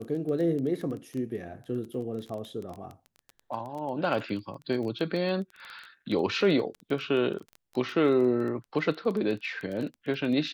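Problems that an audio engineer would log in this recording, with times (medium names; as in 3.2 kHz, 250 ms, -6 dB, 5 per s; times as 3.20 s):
crackle 16 per s -33 dBFS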